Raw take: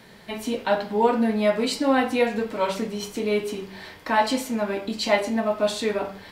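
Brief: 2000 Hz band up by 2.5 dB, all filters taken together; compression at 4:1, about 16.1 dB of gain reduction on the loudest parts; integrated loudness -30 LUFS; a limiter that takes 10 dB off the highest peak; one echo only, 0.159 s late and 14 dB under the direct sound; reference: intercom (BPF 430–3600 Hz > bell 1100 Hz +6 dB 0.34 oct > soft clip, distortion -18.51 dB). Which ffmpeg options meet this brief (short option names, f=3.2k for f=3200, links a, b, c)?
-af "equalizer=f=2k:t=o:g=3,acompressor=threshold=-35dB:ratio=4,alimiter=level_in=5.5dB:limit=-24dB:level=0:latency=1,volume=-5.5dB,highpass=430,lowpass=3.6k,equalizer=f=1.1k:t=o:w=0.34:g=6,aecho=1:1:159:0.2,asoftclip=threshold=-32.5dB,volume=12dB"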